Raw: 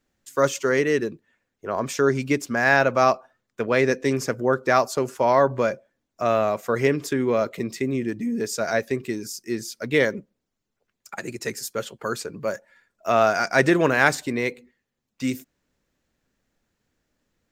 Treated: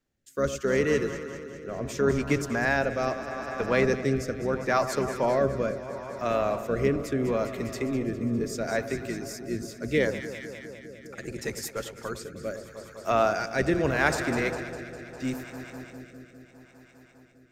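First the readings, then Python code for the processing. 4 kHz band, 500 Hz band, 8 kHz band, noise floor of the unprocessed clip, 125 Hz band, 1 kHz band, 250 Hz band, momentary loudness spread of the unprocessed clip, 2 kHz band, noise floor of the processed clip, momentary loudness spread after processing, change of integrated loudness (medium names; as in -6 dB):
-5.5 dB, -4.5 dB, -5.5 dB, -81 dBFS, -1.5 dB, -6.5 dB, -3.5 dB, 12 LU, -6.0 dB, -55 dBFS, 15 LU, -5.0 dB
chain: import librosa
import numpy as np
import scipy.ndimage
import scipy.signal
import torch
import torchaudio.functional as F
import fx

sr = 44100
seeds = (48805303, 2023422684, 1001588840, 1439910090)

y = fx.octave_divider(x, sr, octaves=1, level_db=-5.0)
y = fx.echo_alternate(y, sr, ms=101, hz=1300.0, feedback_pct=89, wet_db=-11.0)
y = fx.rotary(y, sr, hz=0.75)
y = F.gain(torch.from_numpy(y), -3.5).numpy()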